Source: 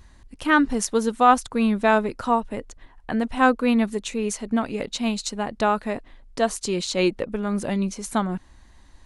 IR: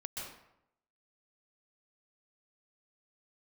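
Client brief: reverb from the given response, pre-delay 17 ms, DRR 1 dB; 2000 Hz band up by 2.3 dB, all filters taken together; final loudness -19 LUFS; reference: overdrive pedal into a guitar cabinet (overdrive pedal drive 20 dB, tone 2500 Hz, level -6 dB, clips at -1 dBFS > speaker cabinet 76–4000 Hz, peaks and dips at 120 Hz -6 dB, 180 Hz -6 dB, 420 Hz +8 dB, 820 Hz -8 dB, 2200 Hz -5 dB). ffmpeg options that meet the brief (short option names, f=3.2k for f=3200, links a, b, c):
-filter_complex "[0:a]equalizer=f=2k:t=o:g=5,asplit=2[a][b];[1:a]atrim=start_sample=2205,adelay=17[c];[b][c]afir=irnorm=-1:irlink=0,volume=-1dB[d];[a][d]amix=inputs=2:normalize=0,asplit=2[e][f];[f]highpass=f=720:p=1,volume=20dB,asoftclip=type=tanh:threshold=-1dB[g];[e][g]amix=inputs=2:normalize=0,lowpass=f=2.5k:p=1,volume=-6dB,highpass=76,equalizer=f=120:t=q:w=4:g=-6,equalizer=f=180:t=q:w=4:g=-6,equalizer=f=420:t=q:w=4:g=8,equalizer=f=820:t=q:w=4:g=-8,equalizer=f=2.2k:t=q:w=4:g=-5,lowpass=f=4k:w=0.5412,lowpass=f=4k:w=1.3066,volume=-5dB"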